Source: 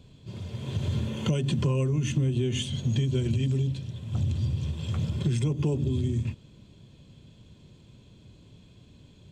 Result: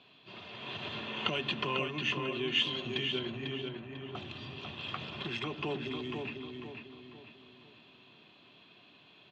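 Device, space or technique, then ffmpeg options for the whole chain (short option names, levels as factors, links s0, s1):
phone earpiece: -filter_complex "[0:a]asettb=1/sr,asplit=3[s0][s1][s2];[s0]atrim=end=3.194[s3];[s1]atrim=start=3.19:end=4.15,asetpts=PTS-STARTPTS,afade=t=in:d=0.004:c=qsin,afade=t=out:st=0.956:d=0.004:c=qsin,lowpass=f=1900:w=0.5412,lowpass=f=1900:w=1.3066[s4];[s2]atrim=start=4.146[s5];[s3][s4]acrossfade=d=0.004:c1=hsin:c2=qsin[s6];[s6][s5]acrossfade=d=0.004:c1=qsin:c2=hsin,highpass=430,equalizer=f=510:t=q:w=4:g=-8,equalizer=f=720:t=q:w=4:g=6,equalizer=f=1200:t=q:w=4:g=8,equalizer=f=1800:t=q:w=4:g=5,equalizer=f=2700:t=q:w=4:g=9,equalizer=f=3900:t=q:w=4:g=3,lowpass=f=4200:w=0.5412,lowpass=f=4200:w=1.3066,asplit=2[s7][s8];[s8]adelay=496,lowpass=f=3900:p=1,volume=0.596,asplit=2[s9][s10];[s10]adelay=496,lowpass=f=3900:p=1,volume=0.41,asplit=2[s11][s12];[s12]adelay=496,lowpass=f=3900:p=1,volume=0.41,asplit=2[s13][s14];[s14]adelay=496,lowpass=f=3900:p=1,volume=0.41,asplit=2[s15][s16];[s16]adelay=496,lowpass=f=3900:p=1,volume=0.41[s17];[s7][s9][s11][s13][s15][s17]amix=inputs=6:normalize=0"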